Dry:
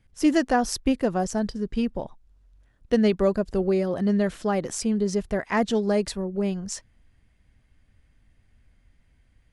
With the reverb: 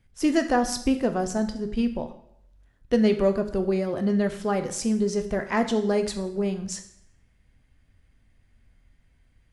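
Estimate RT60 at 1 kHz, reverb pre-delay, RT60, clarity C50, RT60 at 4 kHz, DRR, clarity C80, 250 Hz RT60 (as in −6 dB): 0.70 s, 5 ms, 0.75 s, 11.5 dB, 0.65 s, 7.0 dB, 14.0 dB, 0.65 s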